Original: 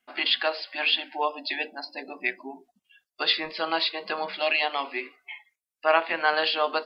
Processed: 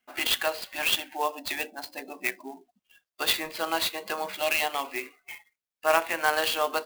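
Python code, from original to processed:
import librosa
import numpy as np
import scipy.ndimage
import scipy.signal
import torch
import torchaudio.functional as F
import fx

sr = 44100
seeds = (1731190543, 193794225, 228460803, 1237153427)

y = fx.clock_jitter(x, sr, seeds[0], jitter_ms=0.027)
y = y * librosa.db_to_amplitude(-1.5)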